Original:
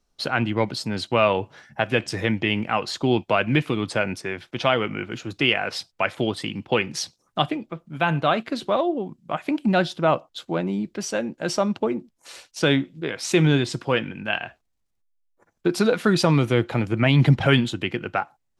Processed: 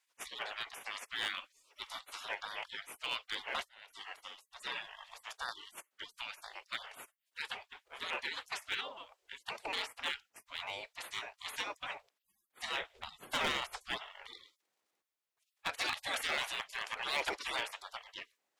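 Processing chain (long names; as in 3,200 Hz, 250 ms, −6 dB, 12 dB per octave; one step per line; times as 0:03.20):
0:03.68–0:04.13: fade in
gate on every frequency bin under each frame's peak −30 dB weak
0:12.80–0:13.98: low-shelf EQ 440 Hz +11 dB
0:15.77–0:16.34: notch filter 1,000 Hz, Q 6.4
bass and treble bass −14 dB, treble −5 dB
hard clipping −35 dBFS, distortion −13 dB
level +7 dB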